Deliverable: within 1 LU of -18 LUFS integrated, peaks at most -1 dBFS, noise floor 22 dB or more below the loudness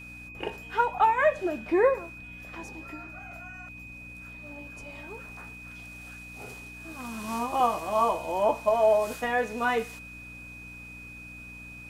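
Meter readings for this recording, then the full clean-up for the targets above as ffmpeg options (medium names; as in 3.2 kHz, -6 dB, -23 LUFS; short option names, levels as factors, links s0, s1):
hum 60 Hz; highest harmonic 300 Hz; hum level -46 dBFS; steady tone 2.5 kHz; tone level -43 dBFS; loudness -26.5 LUFS; peak level -10.5 dBFS; loudness target -18.0 LUFS
-> -af "bandreject=f=60:t=h:w=4,bandreject=f=120:t=h:w=4,bandreject=f=180:t=h:w=4,bandreject=f=240:t=h:w=4,bandreject=f=300:t=h:w=4"
-af "bandreject=f=2500:w=30"
-af "volume=2.66"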